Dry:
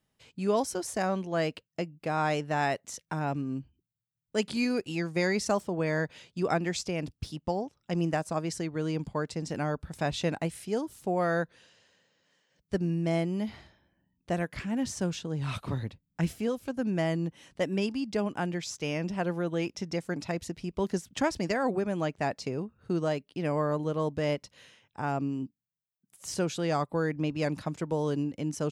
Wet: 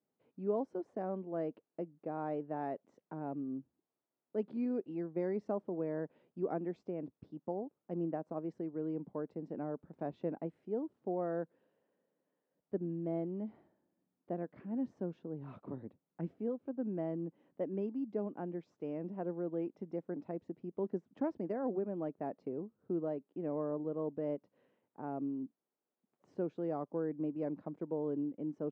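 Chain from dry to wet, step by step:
bit-depth reduction 12 bits, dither triangular
four-pole ladder band-pass 370 Hz, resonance 20%
level +5 dB

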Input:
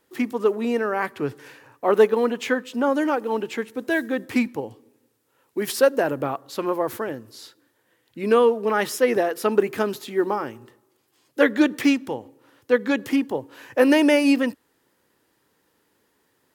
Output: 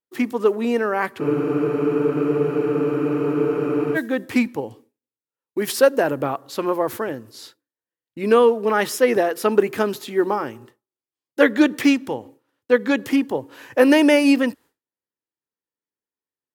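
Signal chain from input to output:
downward expander −43 dBFS
frozen spectrum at 0:01.23, 2.72 s
level +2.5 dB

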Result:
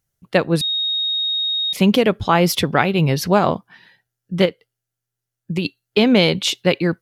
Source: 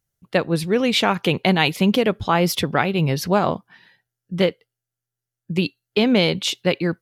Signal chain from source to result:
0:00.61–0:01.73: beep over 3,740 Hz −21 dBFS
0:04.45–0:05.65: downward compressor 2.5 to 1, threshold −23 dBFS, peak gain reduction 6 dB
level +3 dB

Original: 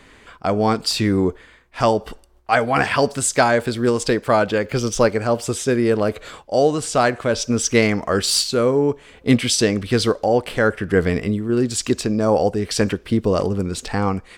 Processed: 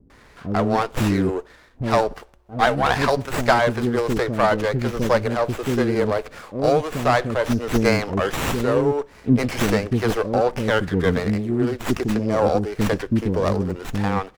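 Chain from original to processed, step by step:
multiband delay without the direct sound lows, highs 100 ms, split 370 Hz
windowed peak hold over 9 samples

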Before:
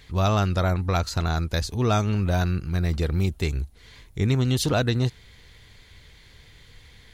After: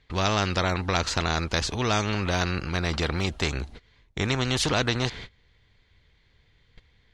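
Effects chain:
high-frequency loss of the air 130 metres
noise gate −42 dBFS, range −27 dB
every bin compressed towards the loudest bin 2 to 1
level +3 dB

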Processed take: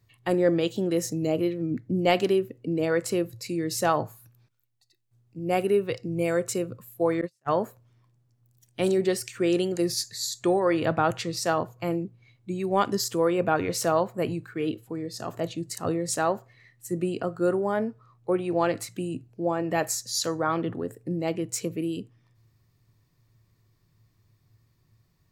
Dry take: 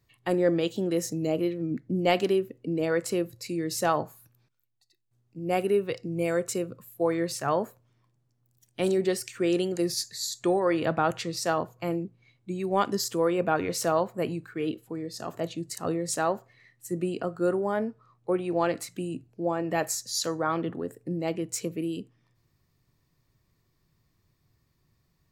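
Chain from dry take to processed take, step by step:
parametric band 110 Hz +12 dB 0.21 octaves
0:07.21–0:07.62: noise gate −26 dBFS, range −40 dB
level +1.5 dB

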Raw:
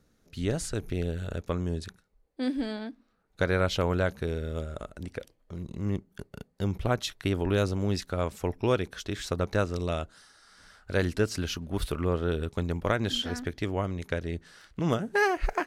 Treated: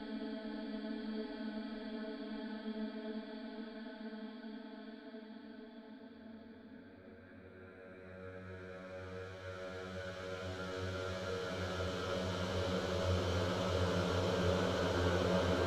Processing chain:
volume swells 652 ms
low-pass that shuts in the quiet parts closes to 1,300 Hz, open at −31 dBFS
extreme stretch with random phases 13×, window 1.00 s, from 0:02.64
level −3 dB

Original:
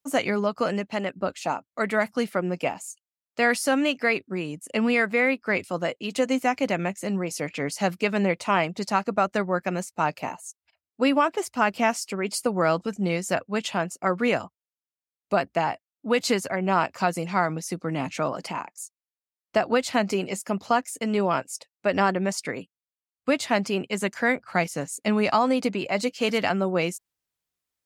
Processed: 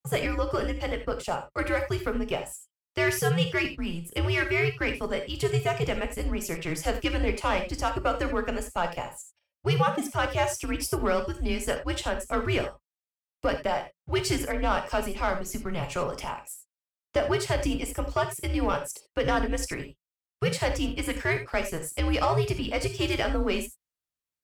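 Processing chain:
leveller curve on the samples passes 1
reverb whose tail is shaped and stops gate 120 ms flat, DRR 6 dB
frequency shifter −150 Hz
speed change +14%
level −6.5 dB

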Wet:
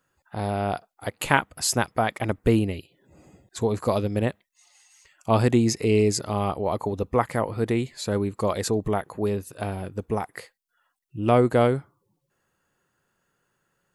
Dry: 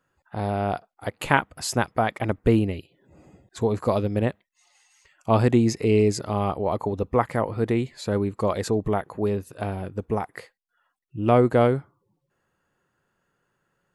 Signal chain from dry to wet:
high-shelf EQ 4,100 Hz +8.5 dB
level −1 dB

